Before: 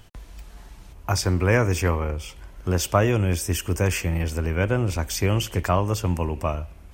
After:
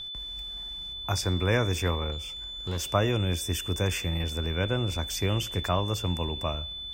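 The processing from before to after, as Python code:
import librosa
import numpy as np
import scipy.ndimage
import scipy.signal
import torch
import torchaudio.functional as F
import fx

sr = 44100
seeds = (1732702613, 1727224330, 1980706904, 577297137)

y = x + 10.0 ** (-30.0 / 20.0) * np.sin(2.0 * np.pi * 3500.0 * np.arange(len(x)) / sr)
y = fx.tube_stage(y, sr, drive_db=20.0, bias=0.25, at=(2.12, 2.87))
y = y * librosa.db_to_amplitude(-5.5)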